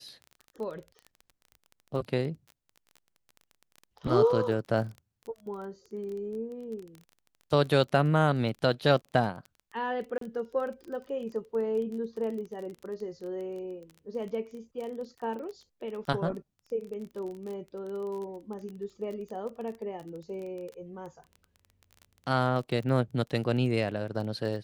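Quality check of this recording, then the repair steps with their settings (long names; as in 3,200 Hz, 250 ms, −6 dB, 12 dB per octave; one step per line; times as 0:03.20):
surface crackle 21 per second −37 dBFS
0:10.18–0:10.21: drop-out 33 ms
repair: click removal
repair the gap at 0:10.18, 33 ms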